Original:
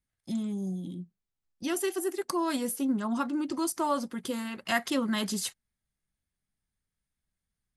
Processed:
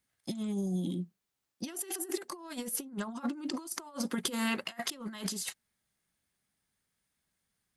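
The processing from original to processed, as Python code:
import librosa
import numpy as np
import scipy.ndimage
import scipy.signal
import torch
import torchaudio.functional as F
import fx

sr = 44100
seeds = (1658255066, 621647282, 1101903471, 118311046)

y = fx.highpass(x, sr, hz=260.0, slope=6)
y = fx.over_compress(y, sr, threshold_db=-38.0, ratio=-0.5)
y = y * librosa.db_to_amplitude(2.5)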